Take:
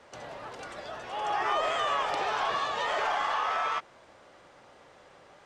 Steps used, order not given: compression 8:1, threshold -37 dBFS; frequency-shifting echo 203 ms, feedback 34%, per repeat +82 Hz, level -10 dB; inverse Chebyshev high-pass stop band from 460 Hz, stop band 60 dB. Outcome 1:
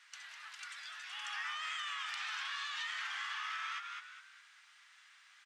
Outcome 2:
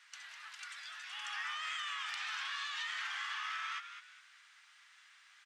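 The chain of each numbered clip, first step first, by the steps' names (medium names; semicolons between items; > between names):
frequency-shifting echo > inverse Chebyshev high-pass > compression; inverse Chebyshev high-pass > compression > frequency-shifting echo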